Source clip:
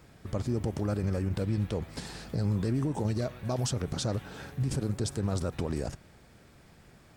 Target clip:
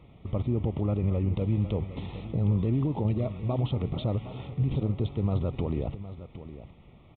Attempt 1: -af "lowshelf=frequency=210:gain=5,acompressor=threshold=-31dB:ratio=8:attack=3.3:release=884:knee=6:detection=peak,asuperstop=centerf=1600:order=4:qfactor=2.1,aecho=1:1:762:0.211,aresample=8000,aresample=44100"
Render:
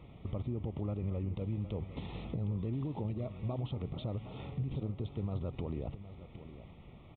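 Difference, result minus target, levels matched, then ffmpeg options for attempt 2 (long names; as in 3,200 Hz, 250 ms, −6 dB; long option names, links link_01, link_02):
downward compressor: peak gain reduction +11.5 dB
-af "asuperstop=centerf=1600:order=4:qfactor=2.1,lowshelf=frequency=210:gain=5,aecho=1:1:762:0.211,aresample=8000,aresample=44100"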